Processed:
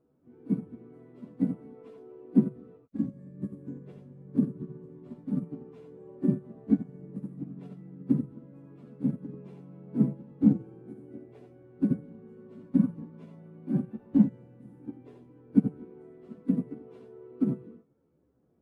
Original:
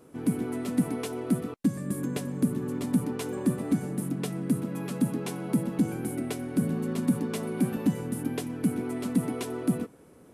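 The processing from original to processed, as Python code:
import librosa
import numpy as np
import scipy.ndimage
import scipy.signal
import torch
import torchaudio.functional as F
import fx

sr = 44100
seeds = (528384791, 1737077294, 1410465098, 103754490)

y = fx.low_shelf(x, sr, hz=85.0, db=-11.5)
y = fx.room_early_taps(y, sr, ms=(14, 43), db=(-11.5, -4.5))
y = fx.stretch_vocoder_free(y, sr, factor=1.8)
y = fx.lowpass(y, sr, hz=2300.0, slope=6)
y = fx.tilt_eq(y, sr, slope=-3.5)
y = fx.upward_expand(y, sr, threshold_db=-27.0, expansion=2.5)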